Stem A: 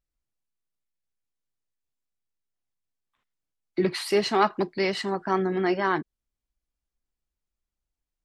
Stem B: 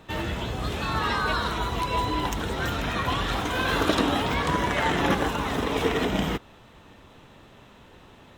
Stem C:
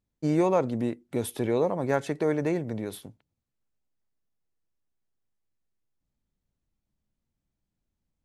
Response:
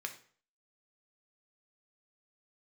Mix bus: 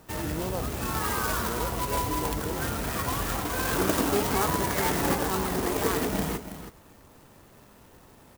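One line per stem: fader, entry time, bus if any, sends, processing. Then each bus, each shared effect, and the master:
-10.5 dB, 0.00 s, send -3 dB, no echo send, none
-3.0 dB, 0.00 s, no send, echo send -11.5 dB, none
-11.0 dB, 0.00 s, no send, no echo send, none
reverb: on, RT60 0.45 s, pre-delay 3 ms
echo: delay 325 ms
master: sampling jitter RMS 0.076 ms

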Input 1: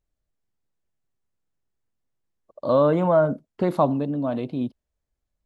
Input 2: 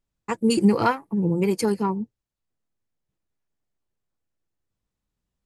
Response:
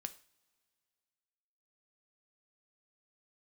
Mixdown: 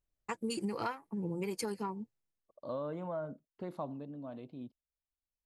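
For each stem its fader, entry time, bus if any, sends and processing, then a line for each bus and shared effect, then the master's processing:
2.14 s -7 dB -> 2.80 s -19 dB, 0.00 s, no send, none
-6.5 dB, 0.00 s, no send, expander -38 dBFS; bass shelf 450 Hz -7.5 dB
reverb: none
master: compression 5:1, threshold -33 dBFS, peak gain reduction 9 dB

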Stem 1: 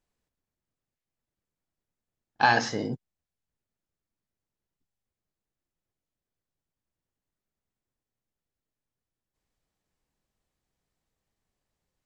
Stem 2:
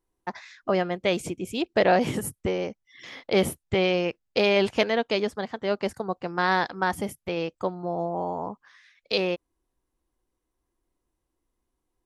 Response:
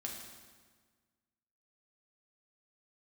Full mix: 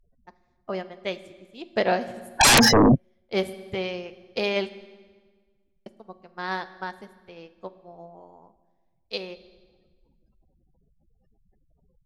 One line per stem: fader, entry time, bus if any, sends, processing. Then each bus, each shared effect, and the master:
-0.5 dB, 0.00 s, no send, spectral gate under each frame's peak -10 dB strong; peaking EQ 100 Hz -8 dB 0.59 oct; sine folder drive 19 dB, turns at -11 dBFS
-2.0 dB, 0.00 s, muted 4.76–5.86 s, send -7.5 dB, treble shelf 4.7 kHz +4.5 dB; de-hum 158.6 Hz, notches 40; upward expansion 2.5:1, over -42 dBFS; auto duck -7 dB, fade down 0.55 s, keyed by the first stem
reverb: on, RT60 1.5 s, pre-delay 4 ms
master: none

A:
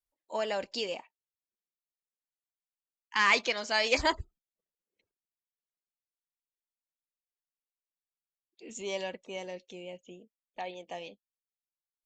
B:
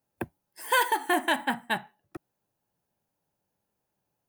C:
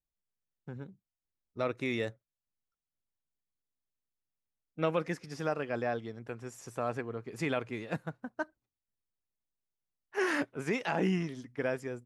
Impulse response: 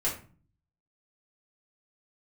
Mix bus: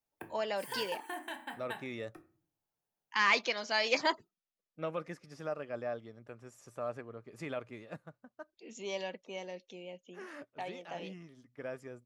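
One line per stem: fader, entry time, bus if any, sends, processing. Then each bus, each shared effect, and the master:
-2.5 dB, 0.00 s, no send, elliptic band-pass 170–6000 Hz
-12.5 dB, 0.00 s, send -8.5 dB, compression 6:1, threshold -28 dBFS, peak gain reduction 9 dB; bass shelf 400 Hz -6.5 dB
-9.0 dB, 0.00 s, no send, small resonant body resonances 590/1200 Hz, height 9 dB; auto duck -9 dB, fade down 0.85 s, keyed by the first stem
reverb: on, RT60 0.40 s, pre-delay 3 ms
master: none

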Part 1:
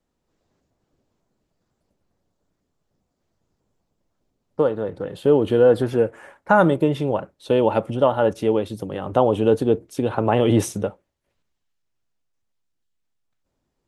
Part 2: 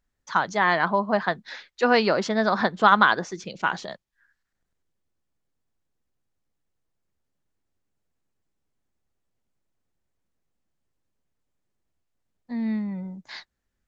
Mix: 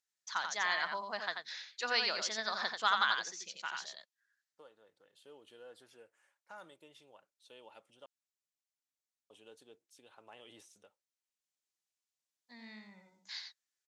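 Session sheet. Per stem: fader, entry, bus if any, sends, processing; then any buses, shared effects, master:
-17.5 dB, 0.00 s, muted 8.06–9.30 s, no send, no echo send, de-esser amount 80%
0.0 dB, 0.00 s, no send, echo send -6 dB, auto duck -8 dB, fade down 1.70 s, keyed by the first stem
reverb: none
echo: delay 88 ms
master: band-pass filter 6.3 kHz, Q 0.9

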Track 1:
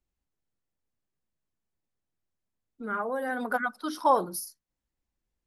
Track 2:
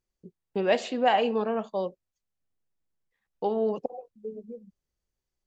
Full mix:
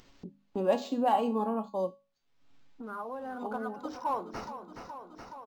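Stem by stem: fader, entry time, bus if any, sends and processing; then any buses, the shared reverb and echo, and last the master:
-19.5 dB, 0.00 s, no send, echo send -12.5 dB, tone controls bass -12 dB, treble +6 dB; waveshaping leveller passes 2
+2.5 dB, 0.00 s, no send, no echo send, treble shelf 5.4 kHz +8.5 dB; hum notches 50/100/150/200/250 Hz; feedback comb 280 Hz, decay 0.29 s, harmonics all, mix 80%; auto duck -8 dB, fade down 0.25 s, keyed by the first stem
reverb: none
echo: feedback delay 422 ms, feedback 54%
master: graphic EQ 125/250/1000/2000/8000 Hz +7/+9/+10/-11/+5 dB; upward compressor, threshold -36 dBFS; decimation joined by straight lines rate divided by 4×

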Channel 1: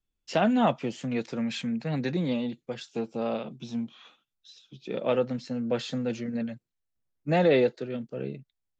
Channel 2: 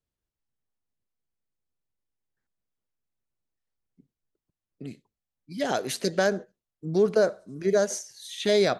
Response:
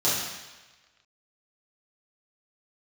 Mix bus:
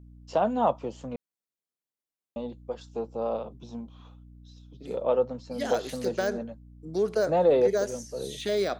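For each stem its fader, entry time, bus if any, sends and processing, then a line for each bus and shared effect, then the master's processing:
-9.0 dB, 0.00 s, muted 1.16–2.36 s, no send, graphic EQ 500/1000/2000 Hz +9/+12/-9 dB; hum 60 Hz, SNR 19 dB
-4.0 dB, 0.00 s, no send, de-esser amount 85%; high-pass 220 Hz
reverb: none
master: treble shelf 5.8 kHz +4.5 dB

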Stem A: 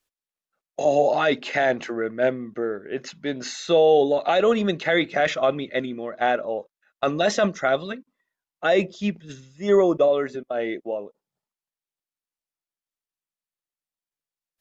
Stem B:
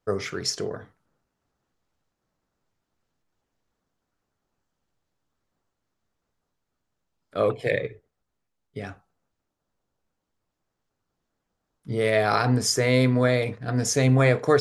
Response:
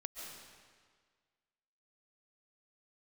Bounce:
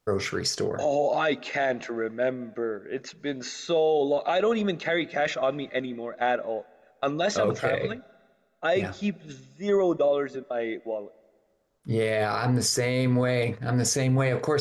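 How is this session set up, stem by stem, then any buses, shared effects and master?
-3.5 dB, 0.00 s, send -20.5 dB, band-stop 3 kHz, Q 12
+2.5 dB, 0.00 s, no send, none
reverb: on, RT60 1.7 s, pre-delay 100 ms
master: peak limiter -15 dBFS, peak gain reduction 10.5 dB

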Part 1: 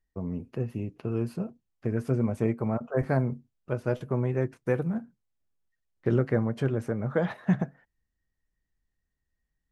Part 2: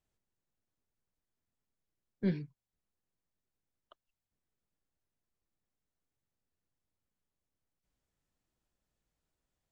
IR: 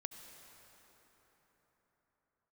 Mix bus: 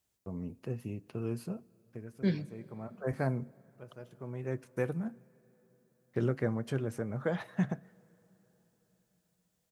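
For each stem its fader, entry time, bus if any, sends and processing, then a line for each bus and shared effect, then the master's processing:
-7.0 dB, 0.10 s, send -17 dB, gate with hold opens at -47 dBFS; auto duck -21 dB, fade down 0.45 s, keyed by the second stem
0.0 dB, 0.00 s, send -7.5 dB, none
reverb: on, RT60 4.5 s, pre-delay 63 ms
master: high-pass 56 Hz; treble shelf 4.2 kHz +10.5 dB

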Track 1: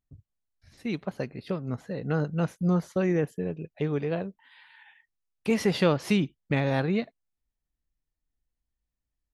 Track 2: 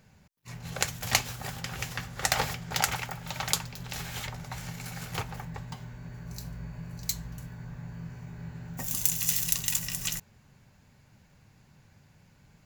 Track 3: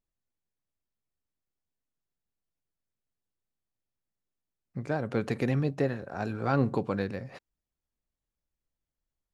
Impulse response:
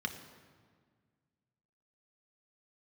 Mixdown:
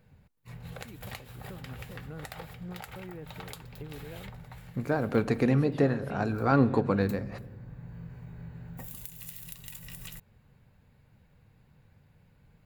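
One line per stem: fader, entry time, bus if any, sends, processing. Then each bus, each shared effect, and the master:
-13.0 dB, 0.00 s, bus A, no send, none
-5.0 dB, 0.00 s, bus A, no send, small resonant body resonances 480/3800 Hz, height 8 dB; auto duck -8 dB, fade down 0.60 s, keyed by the third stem
+2.0 dB, 0.00 s, no bus, send -12 dB, none
bus A: 0.0 dB, peaking EQ 6.1 kHz -13.5 dB 0.76 oct; compression 6:1, threshold -40 dBFS, peak gain reduction 14.5 dB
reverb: on, RT60 1.7 s, pre-delay 3 ms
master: bass shelf 110 Hz +7.5 dB

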